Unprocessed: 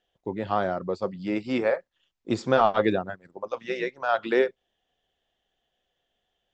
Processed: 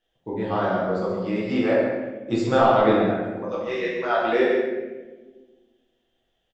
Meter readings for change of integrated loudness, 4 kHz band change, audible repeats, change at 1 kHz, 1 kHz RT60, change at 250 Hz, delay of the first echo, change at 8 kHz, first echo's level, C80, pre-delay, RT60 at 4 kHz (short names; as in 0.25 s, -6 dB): +4.0 dB, +3.0 dB, 1, +3.5 dB, 1.0 s, +5.5 dB, 0.136 s, n/a, -5.0 dB, 2.0 dB, 6 ms, 0.75 s